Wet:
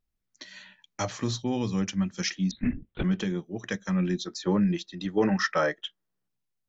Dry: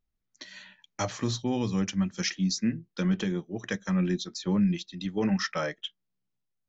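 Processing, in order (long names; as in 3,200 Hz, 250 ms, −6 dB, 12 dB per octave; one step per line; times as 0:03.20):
0:02.51–0:03.04: linear-prediction vocoder at 8 kHz whisper
0:04.20–0:06.27: gain on a spectral selection 290–2,000 Hz +6 dB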